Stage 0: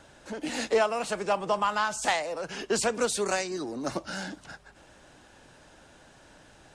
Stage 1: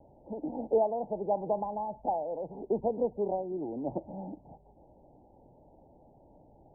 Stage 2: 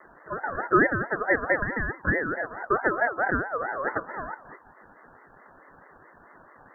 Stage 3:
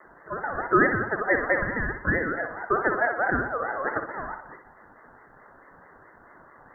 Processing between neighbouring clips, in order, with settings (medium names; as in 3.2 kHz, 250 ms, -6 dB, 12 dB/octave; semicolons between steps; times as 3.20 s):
steep low-pass 900 Hz 96 dB/octave; trim -1.5 dB
hum notches 60/120/180/240/300/360/420/480 Hz; ring modulator with a swept carrier 1 kHz, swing 20%, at 4.6 Hz; trim +9 dB
flutter echo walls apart 10.6 m, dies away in 0.47 s